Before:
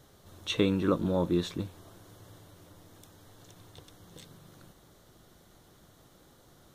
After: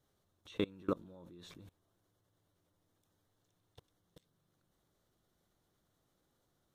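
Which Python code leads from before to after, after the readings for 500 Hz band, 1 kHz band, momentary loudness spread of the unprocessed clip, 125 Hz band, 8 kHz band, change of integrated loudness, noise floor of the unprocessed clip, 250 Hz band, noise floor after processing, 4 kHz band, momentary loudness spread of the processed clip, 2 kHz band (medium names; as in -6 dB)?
-11.5 dB, -11.0 dB, 14 LU, -16.5 dB, -19.0 dB, -10.0 dB, -60 dBFS, -13.5 dB, -80 dBFS, -15.0 dB, 18 LU, -12.5 dB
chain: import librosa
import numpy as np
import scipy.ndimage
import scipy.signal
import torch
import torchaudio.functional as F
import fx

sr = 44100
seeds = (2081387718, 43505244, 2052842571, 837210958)

y = fx.level_steps(x, sr, step_db=24)
y = F.gain(torch.from_numpy(y), -6.5).numpy()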